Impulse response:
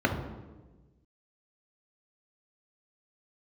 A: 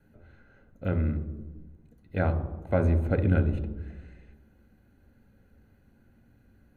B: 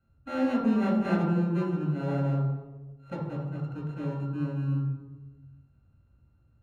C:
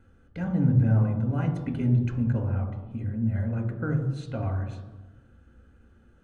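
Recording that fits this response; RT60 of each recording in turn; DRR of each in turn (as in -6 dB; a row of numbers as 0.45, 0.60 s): C; 1.2, 1.2, 1.2 s; 8.0, -4.0, 2.5 dB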